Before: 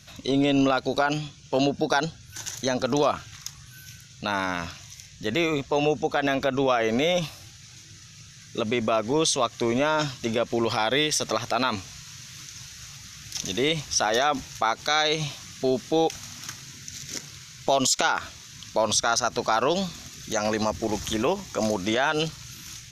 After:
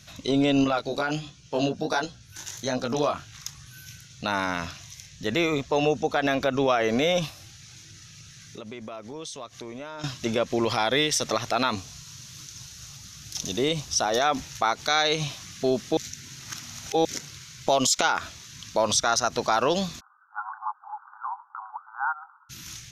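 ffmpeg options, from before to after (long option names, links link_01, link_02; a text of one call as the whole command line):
ffmpeg -i in.wav -filter_complex "[0:a]asettb=1/sr,asplit=3[link_01][link_02][link_03];[link_01]atrim=end=0.644[link_04];[link_02]atrim=start=0.64:end=3.36,asetpts=PTS-STARTPTS,afade=type=in:duration=0.004:curve=qsin,afade=type=out:start_time=2.716:duration=0.004:curve=qsin,flanger=delay=15.5:depth=6.5:speed=1.4[link_05];[link_03]atrim=start=3.356[link_06];[link_04][link_05]acrossfade=duration=0.004:curve1=hsin:curve2=qsin[link_07];[link_07][link_06]acrossfade=duration=0.004:curve1=qsin:curve2=hsin,asettb=1/sr,asplit=3[link_08][link_09][link_10];[link_08]atrim=end=7.304[link_11];[link_09]atrim=start=7.3:end=10.04,asetpts=PTS-STARTPTS,afade=type=in:duration=0.004:curve=qsin,afade=type=out:start_time=2.736:duration=0.004:curve=qsin,acompressor=threshold=-42dB:ratio=2.5:attack=3.2:release=140:knee=1:detection=peak[link_12];[link_10]atrim=start=10.036[link_13];[link_11][link_12]acrossfade=duration=0.004:curve1=hsin:curve2=qsin[link_14];[link_14][link_13]acrossfade=duration=0.004:curve1=qsin:curve2=hsin,asettb=1/sr,asplit=3[link_15][link_16][link_17];[link_15]atrim=end=11.724[link_18];[link_16]atrim=start=11.72:end=14.21,asetpts=PTS-STARTPTS,afade=type=in:duration=0.004:curve=qsin,afade=type=out:start_time=2.486:duration=0.004:curve=qsin,equalizer=frequency=2000:width_type=o:width=1.2:gain=-6.5[link_19];[link_17]atrim=start=14.206[link_20];[link_18][link_19]acrossfade=duration=0.004:curve1=hsin:curve2=qsin[link_21];[link_21][link_20]acrossfade=duration=0.004:curve1=qsin:curve2=hsin,asplit=3[link_22][link_23][link_24];[link_22]afade=type=out:start_time=19.99:duration=0.02[link_25];[link_23]asuperpass=centerf=1100:order=20:qfactor=1.5,afade=type=in:start_time=19.99:duration=0.02,afade=type=out:start_time=22.49:duration=0.02[link_26];[link_24]afade=type=in:start_time=22.49:duration=0.02[link_27];[link_25][link_26][link_27]amix=inputs=3:normalize=0,asplit=3[link_28][link_29][link_30];[link_28]atrim=end=15.972[link_31];[link_29]atrim=start=15.968:end=17.052,asetpts=PTS-STARTPTS,areverse[link_32];[link_30]atrim=start=17.048[link_33];[link_31][link_32]acrossfade=duration=0.004:curve1=hsin:curve2=hsin[link_34];[link_34][link_33]acrossfade=duration=0.004:curve1=hsin:curve2=hsin" out.wav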